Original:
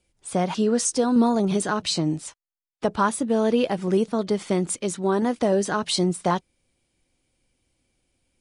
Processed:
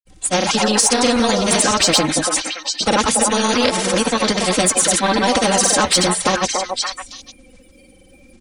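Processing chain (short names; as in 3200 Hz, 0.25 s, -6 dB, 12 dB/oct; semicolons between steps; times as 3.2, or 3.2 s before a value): bin magnitudes rounded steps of 30 dB; comb 3.8 ms, depth 87%; in parallel at -9 dB: soft clip -22.5 dBFS, distortion -7 dB; on the sum: grains, spray 0.1 s, pitch spread up and down by 0 st; wow and flutter 19 cents; delay with a stepping band-pass 0.285 s, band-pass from 690 Hz, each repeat 1.4 oct, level -4 dB; spectral compressor 2:1; gain +5 dB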